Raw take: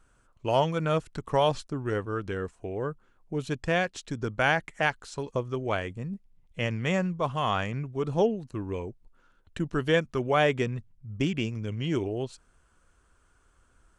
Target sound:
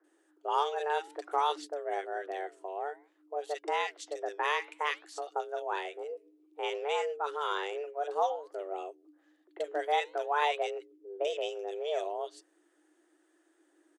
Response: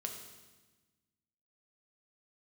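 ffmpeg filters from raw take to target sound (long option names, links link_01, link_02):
-filter_complex "[0:a]afreqshift=290,flanger=delay=1.5:depth=7:regen=-90:speed=0.56:shape=sinusoidal,acrossover=split=210|1700[link_01][link_02][link_03];[link_03]adelay=40[link_04];[link_01]adelay=140[link_05];[link_05][link_02][link_04]amix=inputs=3:normalize=0"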